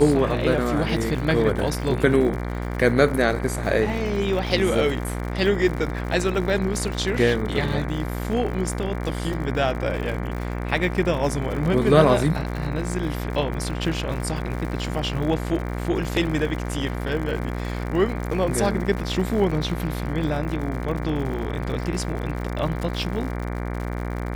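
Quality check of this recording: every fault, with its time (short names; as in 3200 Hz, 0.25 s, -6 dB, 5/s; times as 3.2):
buzz 60 Hz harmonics 39 -28 dBFS
crackle 110/s -31 dBFS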